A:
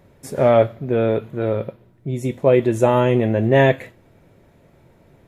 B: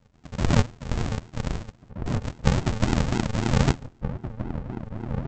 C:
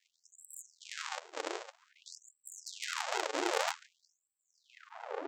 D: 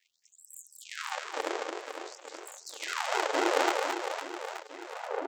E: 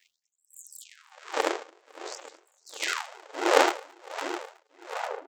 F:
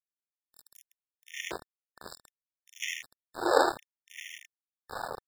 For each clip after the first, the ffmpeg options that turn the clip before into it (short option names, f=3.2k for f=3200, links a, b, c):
-filter_complex "[0:a]tremolo=f=83:d=0.857,aresample=16000,acrusher=samples=38:mix=1:aa=0.000001:lfo=1:lforange=22.8:lforate=3.7,aresample=44100,asplit=2[a][b];[b]adelay=1574,volume=-8dB,highshelf=f=4k:g=-35.4[c];[a][c]amix=inputs=2:normalize=0,volume=-3.5dB"
-af "asoftclip=type=tanh:threshold=-16dB,afftfilt=real='re*gte(b*sr/1024,290*pow(7600/290,0.5+0.5*sin(2*PI*0.52*pts/sr)))':imag='im*gte(b*sr/1024,290*pow(7600/290,0.5+0.5*sin(2*PI*0.52*pts/sr)))':win_size=1024:overlap=0.75"
-filter_complex "[0:a]equalizer=f=6.6k:w=0.41:g=-6,bandreject=f=50:t=h:w=6,bandreject=f=100:t=h:w=6,bandreject=f=150:t=h:w=6,bandreject=f=200:t=h:w=6,bandreject=f=250:t=h:w=6,bandreject=f=300:t=h:w=6,asplit=2[a][b];[b]aecho=0:1:220|506|877.8|1361|1989:0.631|0.398|0.251|0.158|0.1[c];[a][c]amix=inputs=2:normalize=0,volume=6dB"
-af "aeval=exprs='val(0)*pow(10,-29*(0.5-0.5*cos(2*PI*1.4*n/s))/20)':c=same,volume=8dB"
-af "bandreject=f=200.7:t=h:w=4,bandreject=f=401.4:t=h:w=4,bandreject=f=602.1:t=h:w=4,bandreject=f=802.8:t=h:w=4,bandreject=f=1.0035k:t=h:w=4,bandreject=f=1.2042k:t=h:w=4,bandreject=f=1.4049k:t=h:w=4,bandreject=f=1.6056k:t=h:w=4,bandreject=f=1.8063k:t=h:w=4,bandreject=f=2.007k:t=h:w=4,bandreject=f=2.2077k:t=h:w=4,bandreject=f=2.4084k:t=h:w=4,aeval=exprs='val(0)*gte(abs(val(0)),0.0251)':c=same,afftfilt=real='re*gt(sin(2*PI*0.66*pts/sr)*(1-2*mod(floor(b*sr/1024/1800),2)),0)':imag='im*gt(sin(2*PI*0.66*pts/sr)*(1-2*mod(floor(b*sr/1024/1800),2)),0)':win_size=1024:overlap=0.75,volume=-2.5dB"